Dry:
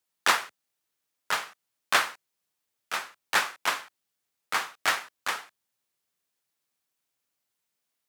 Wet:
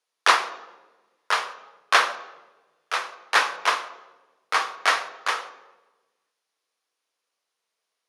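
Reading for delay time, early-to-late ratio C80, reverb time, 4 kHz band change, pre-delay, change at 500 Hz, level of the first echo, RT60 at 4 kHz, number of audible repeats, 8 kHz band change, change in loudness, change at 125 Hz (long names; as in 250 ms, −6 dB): no echo audible, 15.0 dB, 1.2 s, +4.0 dB, 3 ms, +6.5 dB, no echo audible, 0.80 s, no echo audible, +0.5 dB, +5.0 dB, can't be measured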